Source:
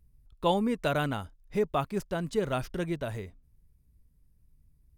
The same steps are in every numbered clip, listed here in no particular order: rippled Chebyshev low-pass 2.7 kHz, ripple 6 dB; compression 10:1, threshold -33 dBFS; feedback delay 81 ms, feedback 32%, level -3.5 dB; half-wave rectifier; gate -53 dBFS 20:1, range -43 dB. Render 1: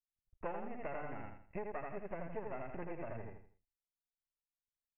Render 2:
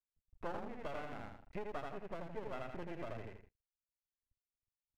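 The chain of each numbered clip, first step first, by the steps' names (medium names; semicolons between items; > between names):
gate > half-wave rectifier > feedback delay > compression > rippled Chebyshev low-pass; feedback delay > compression > gate > rippled Chebyshev low-pass > half-wave rectifier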